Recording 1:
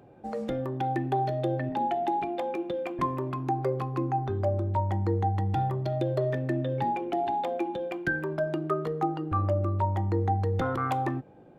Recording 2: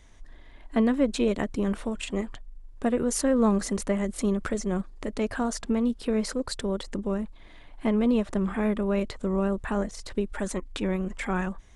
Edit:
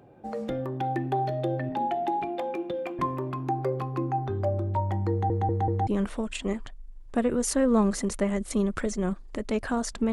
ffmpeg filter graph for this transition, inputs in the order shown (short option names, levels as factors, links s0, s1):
-filter_complex "[0:a]apad=whole_dur=10.12,atrim=end=10.12,asplit=4[s0][s1][s2][s3];[s0]atrim=end=5.302[s4];[s1]atrim=start=5.108:end=5.302[s5];[s2]atrim=start=5.108:end=5.302[s6];[s3]atrim=start=5.108:end=5.302[s7];[1:a]atrim=start=1.548:end=5.8[s8];[s4][s5]acrossfade=d=0.004:c1=hsin:c2=hsin[s9];[s9][s6]acrossfade=d=0.004:c1=hsin:c2=hsin[s10];[s10][s7]acrossfade=d=0.004:c1=hsin:c2=hsin[s11];[s11][s8]acrossfade=d=0.004:c1=hsin:c2=hsin"